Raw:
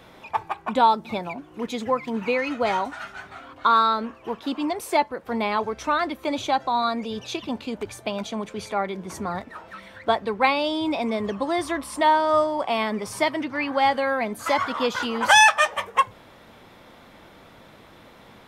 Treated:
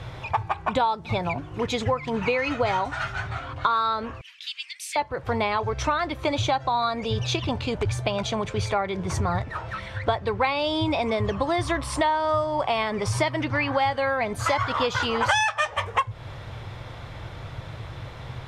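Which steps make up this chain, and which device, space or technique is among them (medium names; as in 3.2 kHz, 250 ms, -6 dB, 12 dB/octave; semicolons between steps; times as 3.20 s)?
jukebox (low-pass 7.5 kHz 12 dB/octave; resonant low shelf 160 Hz +10.5 dB, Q 3; compression 5:1, threshold -28 dBFS, peak gain reduction 16.5 dB); 4.21–4.96 s: steep high-pass 2.1 kHz 36 dB/octave; trim +7 dB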